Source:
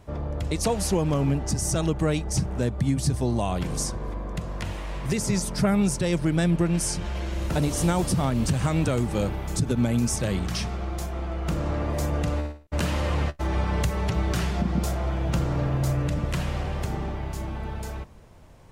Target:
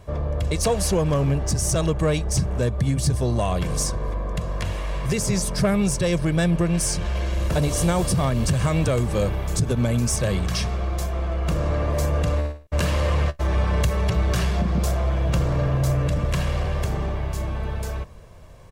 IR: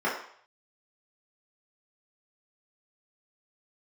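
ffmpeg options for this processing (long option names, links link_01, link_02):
-filter_complex "[0:a]aecho=1:1:1.8:0.41,asplit=2[link_01][link_02];[link_02]asoftclip=type=hard:threshold=-24dB,volume=-6dB[link_03];[link_01][link_03]amix=inputs=2:normalize=0"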